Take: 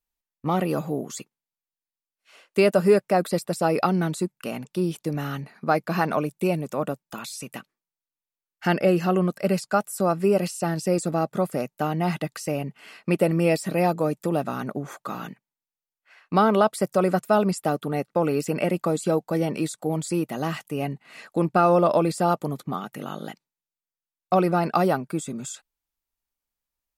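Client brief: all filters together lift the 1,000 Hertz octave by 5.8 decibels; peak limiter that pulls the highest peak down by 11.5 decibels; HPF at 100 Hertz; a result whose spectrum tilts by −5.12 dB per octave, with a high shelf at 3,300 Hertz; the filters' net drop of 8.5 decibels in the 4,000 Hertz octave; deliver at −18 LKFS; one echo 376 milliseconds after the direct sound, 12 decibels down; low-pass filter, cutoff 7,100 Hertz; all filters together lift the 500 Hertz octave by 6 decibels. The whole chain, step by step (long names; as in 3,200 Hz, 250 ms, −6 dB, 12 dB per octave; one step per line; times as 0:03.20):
high-pass filter 100 Hz
low-pass filter 7,100 Hz
parametric band 500 Hz +6 dB
parametric band 1,000 Hz +6.5 dB
high-shelf EQ 3,300 Hz −6 dB
parametric band 4,000 Hz −7.5 dB
brickwall limiter −12.5 dBFS
single-tap delay 376 ms −12 dB
level +6.5 dB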